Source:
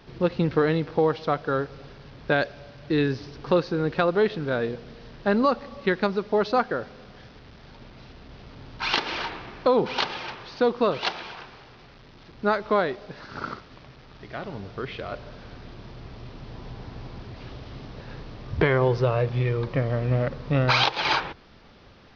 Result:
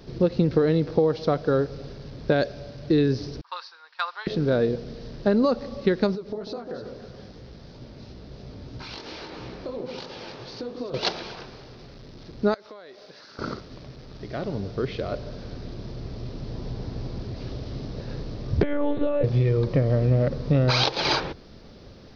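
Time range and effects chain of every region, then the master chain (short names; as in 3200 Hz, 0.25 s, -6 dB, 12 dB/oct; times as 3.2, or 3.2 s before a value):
3.41–4.27 Chebyshev band-pass 930–5600 Hz, order 4 + tilt -2 dB/oct + three-band expander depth 100%
6.15–10.94 chorus 3 Hz, delay 15.5 ms, depth 5.8 ms + compressor, threshold -37 dBFS + echo with dull and thin repeats by turns 0.145 s, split 960 Hz, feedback 54%, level -5 dB
12.54–13.39 HPF 1400 Hz 6 dB/oct + compressor 4:1, threshold -45 dBFS
18.63–19.24 HPF 150 Hz + compressor 3:1, threshold -23 dBFS + monotone LPC vocoder at 8 kHz 290 Hz
whole clip: band shelf 1600 Hz -9 dB 2.4 oct; compressor, threshold -23 dBFS; gain +6.5 dB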